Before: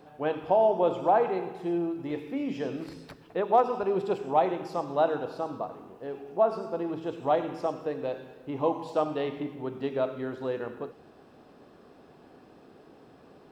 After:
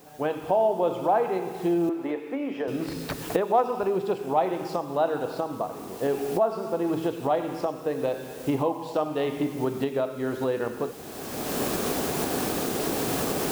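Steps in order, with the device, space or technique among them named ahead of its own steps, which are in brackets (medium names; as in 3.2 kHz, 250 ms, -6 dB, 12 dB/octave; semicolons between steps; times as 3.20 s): cheap recorder with automatic gain (white noise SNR 29 dB; recorder AGC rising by 24 dB/s); 1.89–2.68 s: three-band isolator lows -21 dB, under 290 Hz, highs -15 dB, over 2.6 kHz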